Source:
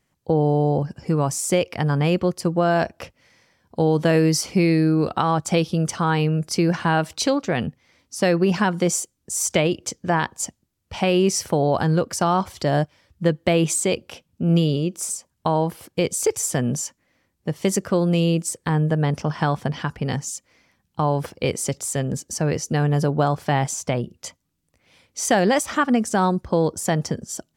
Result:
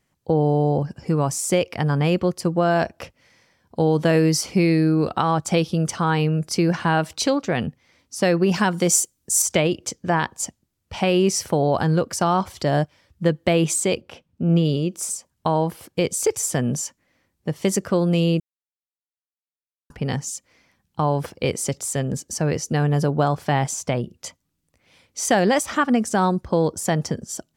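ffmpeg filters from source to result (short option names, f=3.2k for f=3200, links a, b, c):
-filter_complex "[0:a]asettb=1/sr,asplit=3[a][b][c];[a]atrim=end=8.514[d];[b]atrim=start=8.51:end=9.42,asetpts=PTS-STARTPTS,afade=t=in:d=0.004:c=qsin,afade=t=out:st=0.906:d=0.004:c=qsin,highshelf=f=5.1k:g=9[e];[c]atrim=start=9.416[f];[d][e]acrossfade=d=0.004:c1=hsin:c2=qsin[g];[g][f]acrossfade=d=0.004:c1=qsin:c2=hsin,asplit=3[h][i][j];[h]afade=t=out:st=14:d=0.02[k];[i]highshelf=f=4.3k:g=-12,afade=t=in:st=14:d=0.02,afade=t=out:st=14.64:d=0.02[l];[j]afade=t=in:st=14.64:d=0.02[m];[k][l][m]amix=inputs=3:normalize=0,asplit=3[n][o][p];[n]atrim=end=18.4,asetpts=PTS-STARTPTS,afade=t=out:st=18.396:d=0.004:c=hsin[q];[o]atrim=start=18.4:end=19.9,asetpts=PTS-STARTPTS,volume=0[r];[p]atrim=start=19.9,asetpts=PTS-STARTPTS,afade=t=in:d=0.004:c=hsin[s];[q][r][s]concat=n=3:v=0:a=1"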